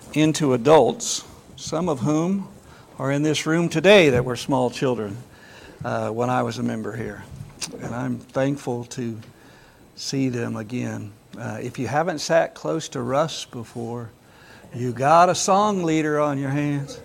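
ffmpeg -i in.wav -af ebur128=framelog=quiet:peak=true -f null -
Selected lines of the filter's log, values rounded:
Integrated loudness:
  I:         -21.9 LUFS
  Threshold: -32.8 LUFS
Loudness range:
  LRA:         8.3 LU
  Threshold: -43.5 LUFS
  LRA low:   -28.6 LUFS
  LRA high:  -20.4 LUFS
True peak:
  Peak:       -3.8 dBFS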